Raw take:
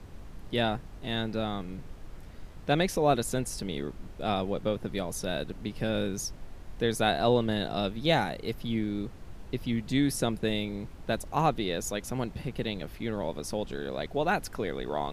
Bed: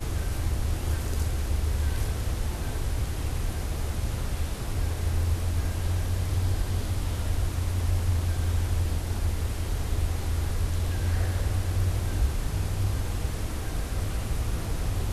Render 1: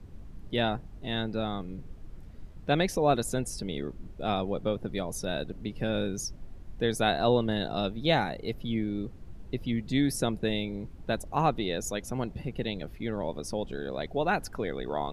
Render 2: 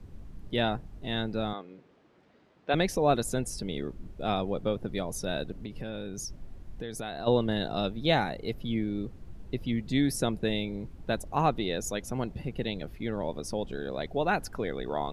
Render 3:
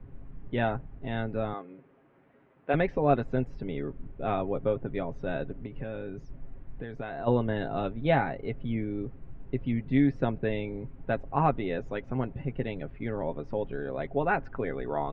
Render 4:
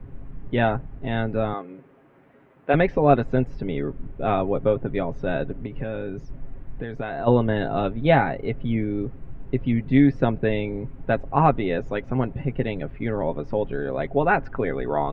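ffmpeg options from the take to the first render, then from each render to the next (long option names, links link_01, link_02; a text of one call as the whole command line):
ffmpeg -i in.wav -af "afftdn=noise_reduction=9:noise_floor=-46" out.wav
ffmpeg -i in.wav -filter_complex "[0:a]asettb=1/sr,asplit=3[link_01][link_02][link_03];[link_01]atrim=end=1.534[link_04];[link_02]atrim=start=1.53:end=2.74,asetpts=PTS-STARTPTS,afade=type=in:duration=0.004:curve=qsin,afade=type=out:start_time=1.206:duration=0.004:curve=qsin,highpass=370,lowpass=4000[link_05];[link_03]atrim=start=2.736[link_06];[link_04][link_05]acrossfade=duration=0.004:curve1=hsin:curve2=qsin[link_07];[link_07][link_06]acrossfade=duration=0.004:curve1=qsin:curve2=hsin,asplit=3[link_08][link_09][link_10];[link_08]afade=type=out:start_time=5.53:duration=0.02[link_11];[link_09]acompressor=threshold=-33dB:ratio=6:attack=3.2:release=140:knee=1:detection=peak,afade=type=in:start_time=5.53:duration=0.02,afade=type=out:start_time=7.26:duration=0.02[link_12];[link_10]afade=type=in:start_time=7.26:duration=0.02[link_13];[link_11][link_12][link_13]amix=inputs=3:normalize=0" out.wav
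ffmpeg -i in.wav -af "lowpass=frequency=2400:width=0.5412,lowpass=frequency=2400:width=1.3066,aecho=1:1:7.4:0.45" out.wav
ffmpeg -i in.wav -af "volume=7dB" out.wav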